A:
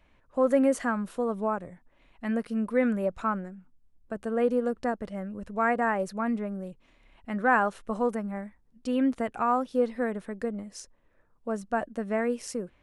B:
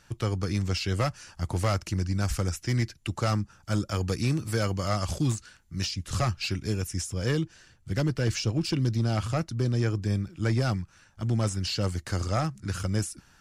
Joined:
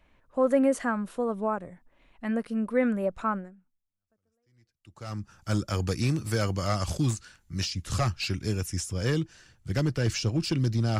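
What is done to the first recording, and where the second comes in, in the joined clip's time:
A
4.34 switch to B from 2.55 s, crossfade 1.94 s exponential

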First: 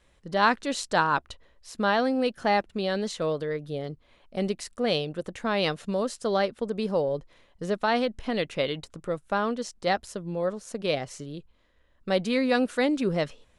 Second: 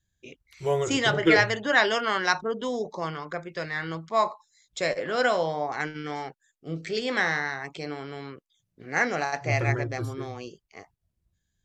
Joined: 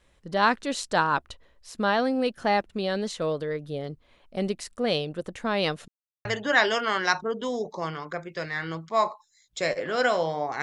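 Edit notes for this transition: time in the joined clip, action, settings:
first
5.88–6.25 mute
6.25 switch to second from 1.45 s

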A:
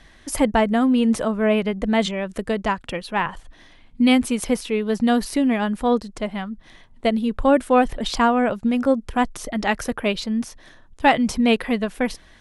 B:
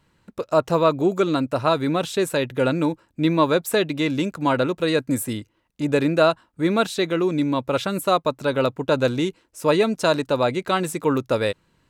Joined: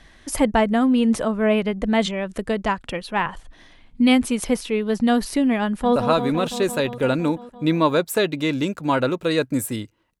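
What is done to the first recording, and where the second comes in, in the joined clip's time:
A
5.66–5.96 echo throw 0.17 s, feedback 80%, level -7 dB
5.96 switch to B from 1.53 s

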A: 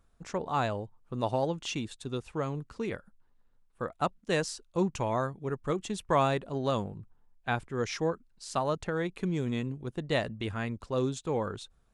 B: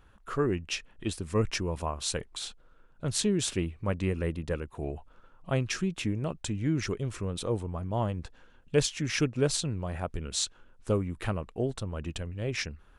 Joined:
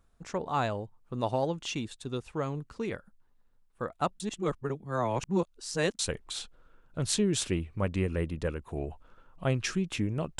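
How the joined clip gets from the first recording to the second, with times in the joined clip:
A
4.2–5.99 reverse
5.99 switch to B from 2.05 s

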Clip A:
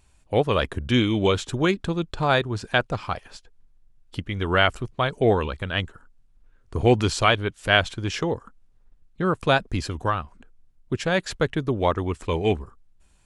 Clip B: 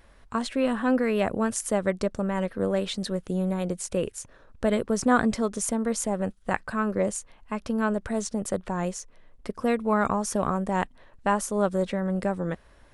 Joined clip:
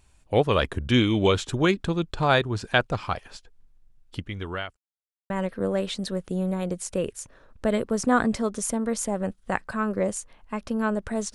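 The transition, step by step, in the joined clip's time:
clip A
3.99–4.77 fade out linear
4.77–5.3 mute
5.3 switch to clip B from 2.29 s

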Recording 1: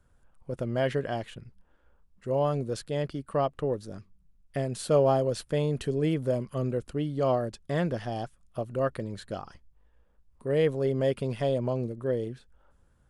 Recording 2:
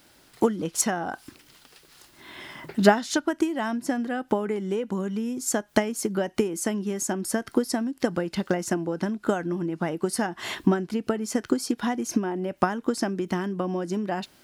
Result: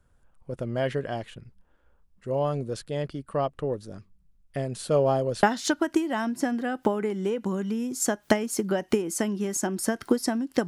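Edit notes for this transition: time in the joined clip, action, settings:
recording 1
5.43 switch to recording 2 from 2.89 s

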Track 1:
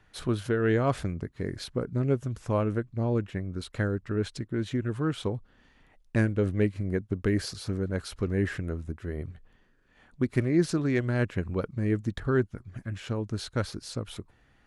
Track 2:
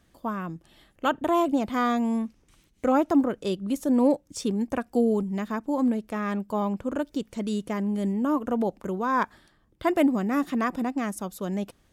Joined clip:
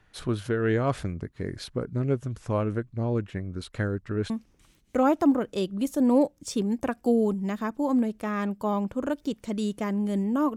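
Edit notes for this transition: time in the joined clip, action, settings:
track 1
4.3 switch to track 2 from 2.19 s

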